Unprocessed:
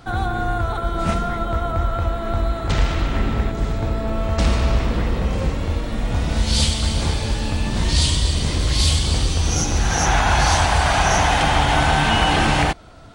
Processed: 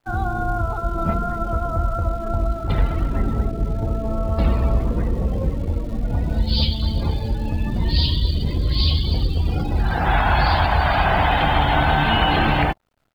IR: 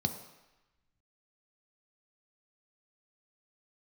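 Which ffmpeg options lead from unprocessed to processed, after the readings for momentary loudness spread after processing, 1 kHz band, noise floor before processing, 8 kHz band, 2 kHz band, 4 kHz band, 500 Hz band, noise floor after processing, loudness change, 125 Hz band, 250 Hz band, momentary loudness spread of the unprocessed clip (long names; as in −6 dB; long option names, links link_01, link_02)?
7 LU, −0.5 dB, −26 dBFS, below −25 dB, −2.0 dB, −3.5 dB, −1.0 dB, −27 dBFS, −1.5 dB, −0.5 dB, −0.5 dB, 7 LU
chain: -af "aresample=11025,aeval=exprs='sgn(val(0))*max(abs(val(0))-0.00501,0)':channel_layout=same,aresample=44100,acrusher=bits=6:dc=4:mix=0:aa=0.000001,afftdn=noise_reduction=18:noise_floor=-25"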